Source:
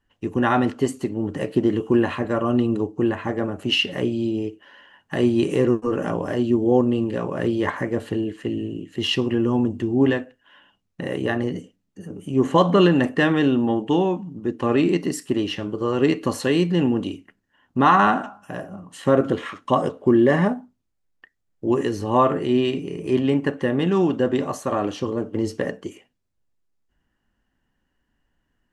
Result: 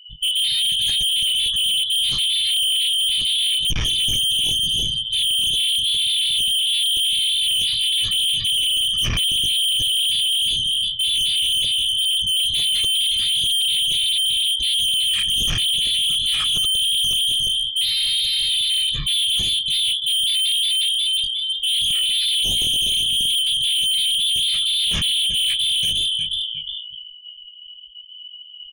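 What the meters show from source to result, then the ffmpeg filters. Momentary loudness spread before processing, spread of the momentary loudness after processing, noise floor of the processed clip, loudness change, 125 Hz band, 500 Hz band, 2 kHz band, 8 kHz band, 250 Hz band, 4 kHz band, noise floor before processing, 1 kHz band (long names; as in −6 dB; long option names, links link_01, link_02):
11 LU, 2 LU, −39 dBFS, +5.0 dB, −9.5 dB, below −25 dB, −2.5 dB, +19.5 dB, below −20 dB, +20.5 dB, −73 dBFS, below −20 dB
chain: -af "afftfilt=real='real(if(lt(b,272),68*(eq(floor(b/68),0)*2+eq(floor(b/68),1)*3+eq(floor(b/68),2)*0+eq(floor(b/68),3)*1)+mod(b,68),b),0)':imag='imag(if(lt(b,272),68*(eq(floor(b/68),0)*2+eq(floor(b/68),1)*3+eq(floor(b/68),2)*0+eq(floor(b/68),3)*1)+mod(b,68),b),0)':win_size=2048:overlap=0.75,aecho=1:1:1.7:0.9,volume=9.5dB,asoftclip=hard,volume=-9.5dB,flanger=delay=19.5:depth=7.7:speed=0.81,aecho=1:1:359|718|1077:0.211|0.0761|0.0274,areverse,acompressor=threshold=-30dB:ratio=6,areverse,equalizer=frequency=77:width_type=o:width=0.35:gain=-8.5,apsyclip=32.5dB,firequalizer=gain_entry='entry(160,0);entry(430,-25);entry(1800,-6);entry(3200,-2);entry(4900,-29)':delay=0.05:min_phase=1,asoftclip=type=tanh:threshold=-18.5dB,afftdn=noise_reduction=35:noise_floor=-37"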